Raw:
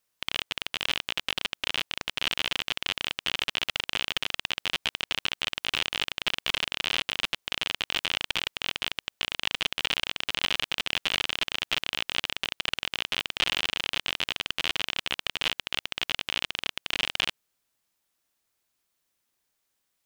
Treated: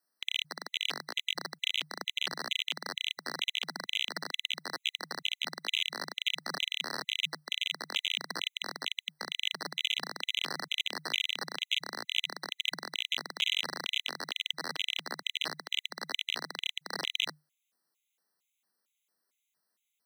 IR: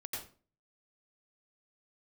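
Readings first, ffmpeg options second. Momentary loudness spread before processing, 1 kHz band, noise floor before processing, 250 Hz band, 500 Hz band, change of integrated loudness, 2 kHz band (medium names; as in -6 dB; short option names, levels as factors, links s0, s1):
3 LU, -5.0 dB, -78 dBFS, -4.5 dB, -5.0 dB, -4.5 dB, -6.0 dB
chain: -af "afreqshift=150,afftfilt=real='re*gt(sin(2*PI*2.2*pts/sr)*(1-2*mod(floor(b*sr/1024/2000),2)),0)':imag='im*gt(sin(2*PI*2.2*pts/sr)*(1-2*mod(floor(b*sr/1024/2000),2)),0)':win_size=1024:overlap=0.75,volume=0.841"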